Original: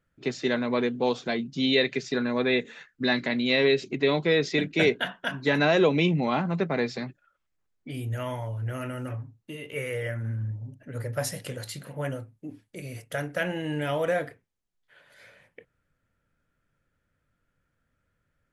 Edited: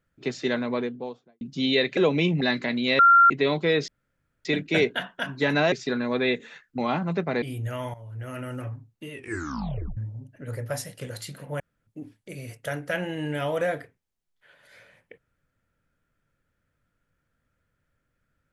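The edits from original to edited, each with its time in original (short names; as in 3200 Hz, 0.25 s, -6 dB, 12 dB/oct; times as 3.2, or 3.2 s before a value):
0.53–1.41 studio fade out
1.97–3.03 swap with 5.77–6.21
3.61–3.92 bleep 1380 Hz -11.5 dBFS
4.5 insert room tone 0.57 s
6.85–7.89 cut
8.41–8.94 fade in, from -14.5 dB
9.59 tape stop 0.85 s
11.1–11.48 fade out, to -7.5 dB
12.07–12.34 room tone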